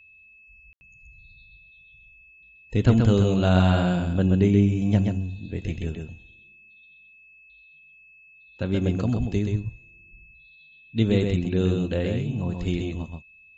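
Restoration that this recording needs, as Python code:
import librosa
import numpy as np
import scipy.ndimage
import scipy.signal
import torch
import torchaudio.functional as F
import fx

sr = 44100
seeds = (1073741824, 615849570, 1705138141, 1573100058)

y = fx.notch(x, sr, hz=2600.0, q=30.0)
y = fx.fix_ambience(y, sr, seeds[0], print_start_s=7.92, print_end_s=8.42, start_s=0.73, end_s=0.81)
y = fx.fix_echo_inverse(y, sr, delay_ms=129, level_db=-4.5)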